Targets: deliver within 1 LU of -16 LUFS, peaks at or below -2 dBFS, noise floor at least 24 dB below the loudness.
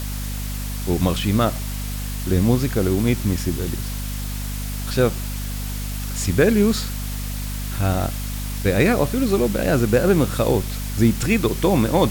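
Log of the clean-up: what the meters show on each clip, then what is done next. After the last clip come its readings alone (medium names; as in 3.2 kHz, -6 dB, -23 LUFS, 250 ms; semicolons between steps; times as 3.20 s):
hum 50 Hz; highest harmonic 250 Hz; hum level -25 dBFS; noise floor -27 dBFS; noise floor target -46 dBFS; loudness -21.5 LUFS; peak level -4.0 dBFS; loudness target -16.0 LUFS
-> hum notches 50/100/150/200/250 Hz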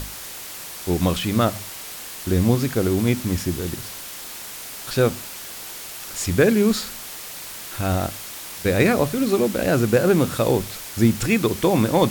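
hum not found; noise floor -36 dBFS; noise floor target -46 dBFS
-> noise reduction 10 dB, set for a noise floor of -36 dBFS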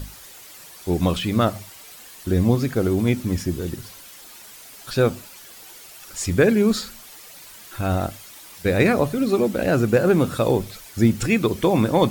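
noise floor -43 dBFS; noise floor target -45 dBFS
-> noise reduction 6 dB, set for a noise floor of -43 dBFS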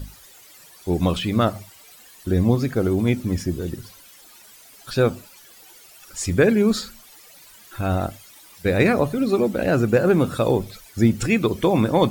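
noise floor -48 dBFS; loudness -21.0 LUFS; peak level -4.5 dBFS; loudness target -16.0 LUFS
-> trim +5 dB; peak limiter -2 dBFS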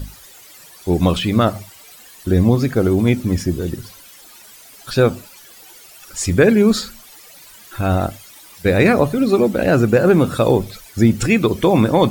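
loudness -16.5 LUFS; peak level -2.0 dBFS; noise floor -43 dBFS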